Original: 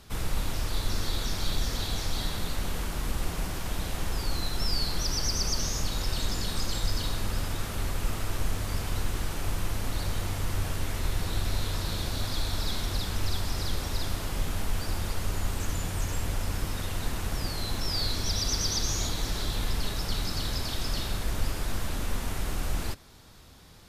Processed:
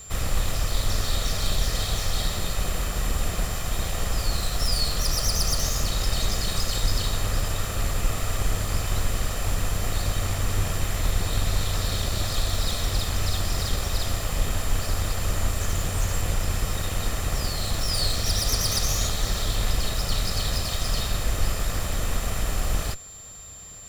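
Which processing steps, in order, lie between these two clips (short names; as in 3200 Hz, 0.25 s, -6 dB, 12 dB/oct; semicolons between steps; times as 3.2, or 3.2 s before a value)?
minimum comb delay 1.6 ms; whine 7300 Hz -47 dBFS; gain +6 dB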